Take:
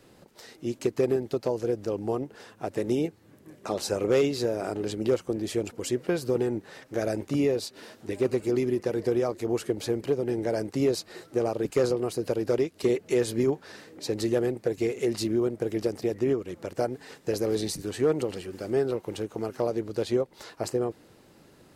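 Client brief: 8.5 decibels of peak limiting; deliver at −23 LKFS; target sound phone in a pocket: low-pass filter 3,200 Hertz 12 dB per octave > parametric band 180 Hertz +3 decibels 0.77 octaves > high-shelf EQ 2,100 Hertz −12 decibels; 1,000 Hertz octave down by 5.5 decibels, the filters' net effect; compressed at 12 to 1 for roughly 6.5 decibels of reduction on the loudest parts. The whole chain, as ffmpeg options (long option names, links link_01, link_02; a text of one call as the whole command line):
ffmpeg -i in.wav -af "equalizer=frequency=1000:width_type=o:gain=-6,acompressor=threshold=-26dB:ratio=12,alimiter=level_in=1dB:limit=-24dB:level=0:latency=1,volume=-1dB,lowpass=3200,equalizer=frequency=180:width_type=o:width=0.77:gain=3,highshelf=frequency=2100:gain=-12,volume=13dB" out.wav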